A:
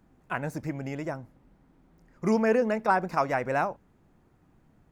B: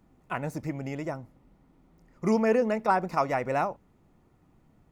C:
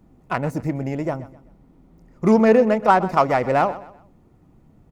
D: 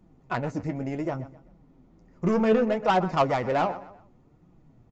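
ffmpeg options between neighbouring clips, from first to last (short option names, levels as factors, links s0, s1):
-af "bandreject=f=1600:w=7.7"
-filter_complex "[0:a]asplit=2[s0][s1];[s1]adynamicsmooth=sensitivity=2.5:basefreq=970,volume=1.06[s2];[s0][s2]amix=inputs=2:normalize=0,aecho=1:1:127|254|381:0.15|0.0509|0.0173,volume=1.41"
-af "aresample=16000,asoftclip=type=tanh:threshold=0.251,aresample=44100,flanger=delay=5.4:depth=6.2:regen=47:speed=0.67:shape=triangular"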